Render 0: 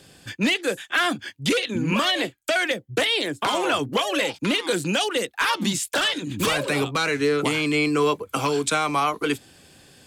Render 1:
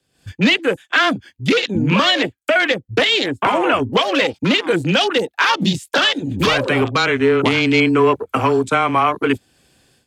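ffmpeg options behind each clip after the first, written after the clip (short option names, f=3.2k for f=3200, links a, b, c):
-af "afwtdn=0.0316,dynaudnorm=f=120:g=3:m=15dB,afreqshift=-14,volume=-3.5dB"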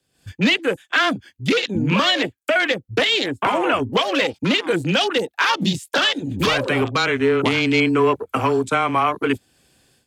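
-af "highshelf=f=8.6k:g=4.5,volume=-3dB"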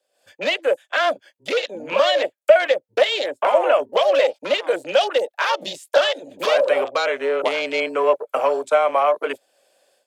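-af "highpass=f=580:t=q:w=7.1,volume=-5dB"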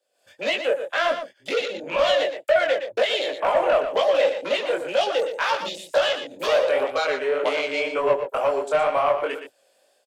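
-af "asoftclip=type=tanh:threshold=-10.5dB,flanger=delay=17.5:depth=6.9:speed=2,aecho=1:1:118:0.355,volume=1dB"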